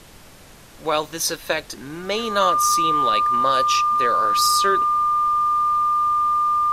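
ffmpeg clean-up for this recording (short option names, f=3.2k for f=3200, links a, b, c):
-af "bandreject=f=1.2k:w=30,afftdn=nr=23:nf=-44"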